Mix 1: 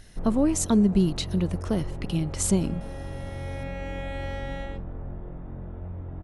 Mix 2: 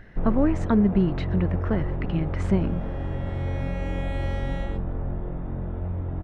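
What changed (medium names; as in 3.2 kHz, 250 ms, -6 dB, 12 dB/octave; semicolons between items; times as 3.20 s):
speech: add resonant low-pass 1.8 kHz, resonance Q 2.5; first sound +7.0 dB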